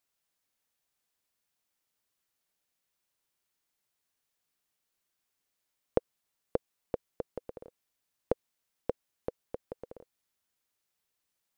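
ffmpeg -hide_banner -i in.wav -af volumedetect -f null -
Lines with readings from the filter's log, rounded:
mean_volume: -44.6 dB
max_volume: -9.2 dB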